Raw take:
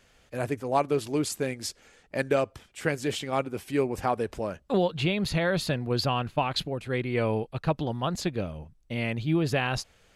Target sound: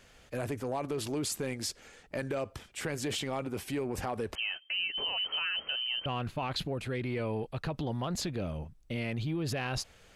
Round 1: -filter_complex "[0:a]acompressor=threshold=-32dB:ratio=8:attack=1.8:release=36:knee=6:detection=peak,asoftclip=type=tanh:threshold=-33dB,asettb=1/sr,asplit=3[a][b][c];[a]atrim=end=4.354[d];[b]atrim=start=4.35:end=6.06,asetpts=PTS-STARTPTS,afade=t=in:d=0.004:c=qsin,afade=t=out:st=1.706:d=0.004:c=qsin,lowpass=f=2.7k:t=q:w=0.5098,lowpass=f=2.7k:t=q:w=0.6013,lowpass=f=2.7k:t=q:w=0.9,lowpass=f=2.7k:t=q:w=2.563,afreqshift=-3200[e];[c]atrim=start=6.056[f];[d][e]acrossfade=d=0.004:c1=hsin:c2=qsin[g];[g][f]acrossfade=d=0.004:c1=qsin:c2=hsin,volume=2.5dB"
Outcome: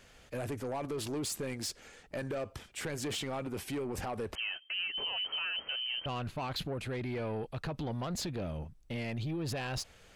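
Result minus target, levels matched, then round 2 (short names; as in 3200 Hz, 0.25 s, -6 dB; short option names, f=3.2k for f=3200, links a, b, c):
soft clip: distortion +17 dB
-filter_complex "[0:a]acompressor=threshold=-32dB:ratio=8:attack=1.8:release=36:knee=6:detection=peak,asoftclip=type=tanh:threshold=-21.5dB,asettb=1/sr,asplit=3[a][b][c];[a]atrim=end=4.354[d];[b]atrim=start=4.35:end=6.06,asetpts=PTS-STARTPTS,afade=t=in:d=0.004:c=qsin,afade=t=out:st=1.706:d=0.004:c=qsin,lowpass=f=2.7k:t=q:w=0.5098,lowpass=f=2.7k:t=q:w=0.6013,lowpass=f=2.7k:t=q:w=0.9,lowpass=f=2.7k:t=q:w=2.563,afreqshift=-3200[e];[c]atrim=start=6.056[f];[d][e]acrossfade=d=0.004:c1=hsin:c2=qsin[g];[g][f]acrossfade=d=0.004:c1=qsin:c2=hsin,volume=2.5dB"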